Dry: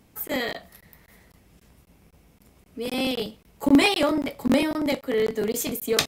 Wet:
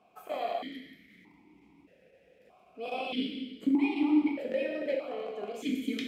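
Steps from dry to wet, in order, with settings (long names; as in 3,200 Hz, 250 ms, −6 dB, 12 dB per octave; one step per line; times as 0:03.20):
downward compressor 6 to 1, threshold −29 dBFS, peak gain reduction 16 dB
reverb whose tail is shaped and stops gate 480 ms falling, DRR 0 dB
formant filter that steps through the vowels 1.6 Hz
level +8 dB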